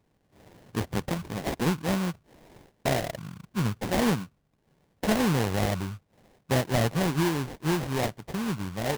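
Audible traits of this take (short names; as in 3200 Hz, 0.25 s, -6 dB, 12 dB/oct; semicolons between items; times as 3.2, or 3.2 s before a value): aliases and images of a low sample rate 1300 Hz, jitter 20%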